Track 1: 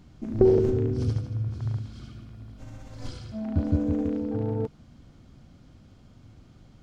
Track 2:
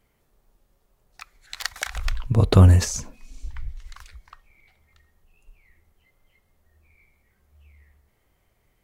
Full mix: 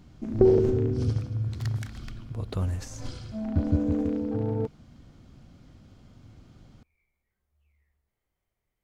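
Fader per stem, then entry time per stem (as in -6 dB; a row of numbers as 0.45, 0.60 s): 0.0, -16.5 dB; 0.00, 0.00 s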